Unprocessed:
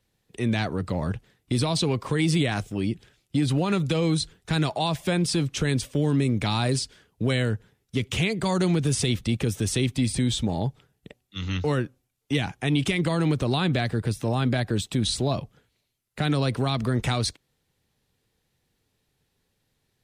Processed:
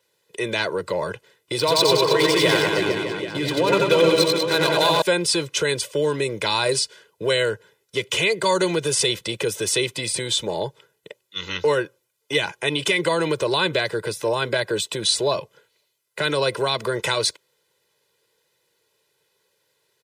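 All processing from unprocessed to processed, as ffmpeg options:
-filter_complex "[0:a]asettb=1/sr,asplit=3[s0][s1][s2];[s0]atrim=end=1.584[s3];[s1]atrim=start=1.58:end=5.02,asetpts=PTS-STARTPTS,afade=t=in:d=0.004:c=qsin,afade=t=out:st=3.436:d=0.004:c=qsin,aecho=1:1:90|193.5|312.5|449.4|606.8|787.8|996:0.794|0.631|0.501|0.398|0.316|0.251|0.2,atrim=end_sample=151704,adynamicsmooth=sensitivity=5:basefreq=2500[s4];[s2]atrim=start=5.016[s5];[s3][s4]acrossfade=d=0.004:c1=hsin:c2=qsin[s6];[s6][s5]acrossfade=d=0.004:c1=qsin:c2=hsin,highpass=330,aecho=1:1:2:0.85,volume=1.78"

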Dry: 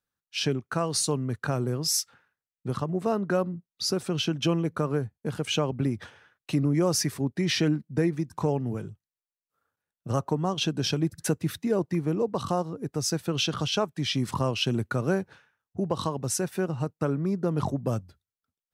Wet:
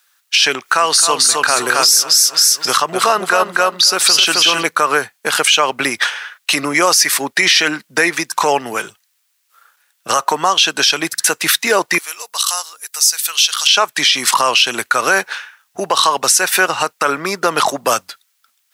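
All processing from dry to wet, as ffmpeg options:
-filter_complex "[0:a]asettb=1/sr,asplit=3[s0][s1][s2];[s0]atrim=end=0.554[s3];[s1]atrim=start=0.55:end=4.63,asetpts=PTS-STARTPTS,afade=t=in:d=0.004:c=qsin,afade=t=out:st=4.076:d=0.004:c=qsin,aecho=1:1:265|530|795:0.562|0.141|0.0351,atrim=end_sample=179928,acompressor=mode=upward:threshold=0.0316:ratio=2.5:attack=3.2:release=140:knee=2.83:detection=peak[s4];[s2]atrim=start=4.626[s5];[s3][s4]acrossfade=d=0.004:c1=hsin:c2=qsin[s6];[s6][s5]acrossfade=d=0.004:c1=qsin:c2=hsin,asettb=1/sr,asplit=3[s7][s8][s9];[s7]atrim=end=11.984[s10];[s8]atrim=start=11.98:end=13.67,asetpts=PTS-STARTPTS,afade=t=in:d=0.004:c=qsin,afade=t=out:st=1.686:d=0.004:c=qsin,highpass=f=550:p=1,aderivative[s11];[s9]atrim=start=13.666[s12];[s10][s11]acrossfade=d=0.004:c1=hsin:c2=qsin[s13];[s13][s12]acrossfade=d=0.004:c1=qsin:c2=hsin,highpass=1400,acompressor=threshold=0.0158:ratio=2,alimiter=level_in=42.2:limit=0.891:release=50:level=0:latency=1,volume=0.891"

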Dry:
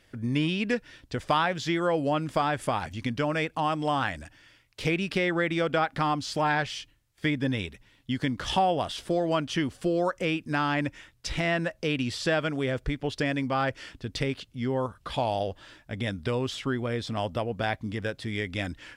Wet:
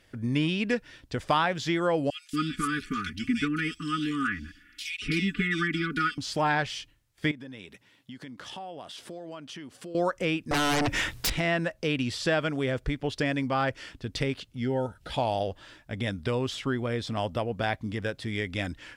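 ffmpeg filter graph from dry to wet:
-filter_complex "[0:a]asettb=1/sr,asplit=3[s0][s1][s2];[s0]atrim=end=2.104[s3];[s1]atrim=start=2.1:end=6.18,asetpts=PTS-STARTPTS,afade=t=in:d=0.004:c=qsin,afade=t=out:st=4.076:d=0.004:c=qsin,asuperstop=centerf=700:order=20:qfactor=0.93,aecho=1:1:4.1:0.92,atrim=end_sample=179928,acrossover=split=2500[s4][s5];[s4]adelay=230[s6];[s6][s5]amix=inputs=2:normalize=0,atrim=end_sample=179928[s7];[s2]atrim=start=6.176[s8];[s3][s7]acrossfade=d=0.004:c1=hsin:c2=qsin[s9];[s9][s8]acrossfade=d=0.004:c1=qsin:c2=hsin,asettb=1/sr,asplit=3[s10][s11][s12];[s10]atrim=end=7.314[s13];[s11]atrim=start=7.31:end=9.95,asetpts=PTS-STARTPTS,afade=t=in:d=0.004:c=qsin,afade=t=out:st=2.636:d=0.004:c=qsin,acompressor=threshold=0.01:ratio=4:attack=3.2:release=140:knee=1:detection=peak,highpass=160[s14];[s12]atrim=start=9.946[s15];[s13][s14]acrossfade=d=0.004:c1=hsin:c2=qsin[s16];[s16][s15]acrossfade=d=0.004:c1=qsin:c2=hsin,asettb=1/sr,asplit=3[s17][s18][s19];[s17]atrim=end=10.514[s20];[s18]atrim=start=10.51:end=11.3,asetpts=PTS-STARTPTS,afade=t=in:d=0.004:c=qsin,afade=t=out:st=0.786:d=0.004:c=qsin,acompressor=threshold=0.0178:ratio=12:attack=3.2:release=140:knee=1:detection=peak,aeval=exprs='0.0794*sin(PI/2*7.94*val(0)/0.0794)':c=same[s21];[s19]atrim=start=11.296[s22];[s20][s21]acrossfade=d=0.004:c1=hsin:c2=qsin[s23];[s23][s22]acrossfade=d=0.004:c1=qsin:c2=hsin,asettb=1/sr,asplit=3[s24][s25][s26];[s24]atrim=end=14.564[s27];[s25]atrim=start=14.56:end=15.12,asetpts=PTS-STARTPTS,afade=t=in:d=0.004:c=qsin,afade=t=out:st=0.556:d=0.004:c=qsin,acompressor=mode=upward:threshold=0.00355:ratio=2.5:attack=3.2:release=140:knee=2.83:detection=peak,asuperstop=centerf=1100:order=20:qfactor=3.8[s28];[s26]atrim=start=15.116[s29];[s27][s28]acrossfade=d=0.004:c1=hsin:c2=qsin[s30];[s30][s29]acrossfade=d=0.004:c1=qsin:c2=hsin"

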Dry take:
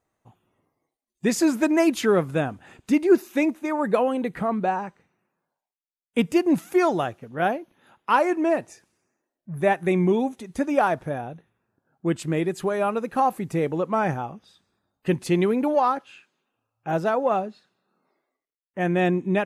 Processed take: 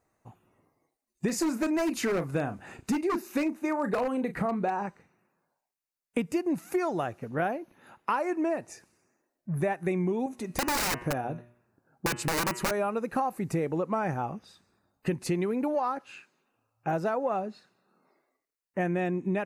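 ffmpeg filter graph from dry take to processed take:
-filter_complex "[0:a]asettb=1/sr,asplit=3[s0][s1][s2];[s0]atrim=end=1.284[s3];[s1]atrim=start=1.28:end=4.86,asetpts=PTS-STARTPTS,afade=t=in:d=0.004:c=qsin,afade=t=out:st=3.576:d=0.004:c=qsin,asplit=2[s4][s5];[s5]adelay=35,volume=0.266[s6];[s4][s6]amix=inputs=2:normalize=0,atrim=end_sample=157878,aeval=exprs='0.178*(abs(mod(val(0)/0.178+3,4)-2)-1)':c=same[s7];[s2]atrim=start=4.856[s8];[s3][s7]acrossfade=d=0.004:c1=hsin:c2=qsin[s9];[s9][s8]acrossfade=d=0.004:c1=qsin:c2=hsin,asettb=1/sr,asplit=3[s10][s11][s12];[s10]atrim=end=10.264[s13];[s11]atrim=start=10.26:end=12.71,asetpts=PTS-STARTPTS,afade=t=in:d=0.004:c=qsin,afade=t=out:st=2.446:d=0.004:c=qsin,adynamicequalizer=threshold=0.0112:dfrequency=320:dqfactor=3.7:tfrequency=320:tqfactor=3.7:attack=5:release=100:ratio=0.375:range=2:mode=boostabove:tftype=bell,aeval=exprs='(mod(10*val(0)+1,2)-1)/10':c=same,bandreject=f=120.1:t=h:w=4,bandreject=f=240.2:t=h:w=4,bandreject=f=360.3:t=h:w=4,bandreject=f=480.4:t=h:w=4,bandreject=f=600.5:t=h:w=4,bandreject=f=720.6:t=h:w=4,bandreject=f=840.7:t=h:w=4,bandreject=f=960.8:t=h:w=4,bandreject=f=1080.9:t=h:w=4,bandreject=f=1201:t=h:w=4,bandreject=f=1321.1:t=h:w=4,bandreject=f=1441.2:t=h:w=4,bandreject=f=1561.3:t=h:w=4,bandreject=f=1681.4:t=h:w=4,bandreject=f=1801.5:t=h:w=4,bandreject=f=1921.6:t=h:w=4,bandreject=f=2041.7:t=h:w=4,bandreject=f=2161.8:t=h:w=4,bandreject=f=2281.9:t=h:w=4,bandreject=f=2402:t=h:w=4,bandreject=f=2522.1:t=h:w=4,bandreject=f=2642.2:t=h:w=4,bandreject=f=2762.3:t=h:w=4,bandreject=f=2882.4:t=h:w=4,bandreject=f=3002.5:t=h:w=4[s14];[s12]atrim=start=12.706[s15];[s13][s14]acrossfade=d=0.004:c1=hsin:c2=qsin[s16];[s16][s15]acrossfade=d=0.004:c1=qsin:c2=hsin,equalizer=f=3300:t=o:w=0.25:g=-10.5,acompressor=threshold=0.0355:ratio=6,volume=1.41"

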